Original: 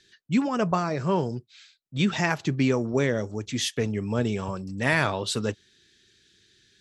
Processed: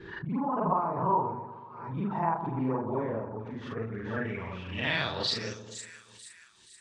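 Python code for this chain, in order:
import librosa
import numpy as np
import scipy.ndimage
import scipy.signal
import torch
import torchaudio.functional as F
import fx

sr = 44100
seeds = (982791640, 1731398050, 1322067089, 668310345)

p1 = fx.frame_reverse(x, sr, frame_ms=108.0)
p2 = p1 + fx.echo_split(p1, sr, split_hz=1400.0, low_ms=123, high_ms=475, feedback_pct=52, wet_db=-10.0, dry=0)
p3 = fx.filter_sweep_lowpass(p2, sr, from_hz=960.0, to_hz=8700.0, start_s=3.53, end_s=5.98, q=5.9)
p4 = fx.pre_swell(p3, sr, db_per_s=56.0)
y = p4 * 10.0 ** (-6.5 / 20.0)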